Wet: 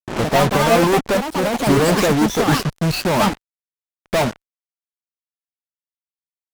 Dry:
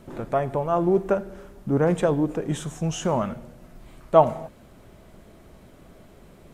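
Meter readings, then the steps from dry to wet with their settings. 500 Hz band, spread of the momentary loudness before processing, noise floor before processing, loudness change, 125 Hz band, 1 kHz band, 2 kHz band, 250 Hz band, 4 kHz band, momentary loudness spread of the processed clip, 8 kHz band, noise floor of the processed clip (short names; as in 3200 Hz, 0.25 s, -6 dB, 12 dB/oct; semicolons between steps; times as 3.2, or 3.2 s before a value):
+4.5 dB, 18 LU, -51 dBFS, +6.5 dB, +7.0 dB, +7.0 dB, +16.5 dB, +7.5 dB, +17.5 dB, 6 LU, +13.0 dB, under -85 dBFS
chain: nonlinear frequency compression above 2100 Hz 1.5:1; reverb removal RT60 0.64 s; notches 50/100 Hz; sample leveller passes 1; fuzz box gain 40 dB, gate -34 dBFS; echoes that change speed 0.105 s, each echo +5 st, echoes 2; upward expander 1.5:1, over -37 dBFS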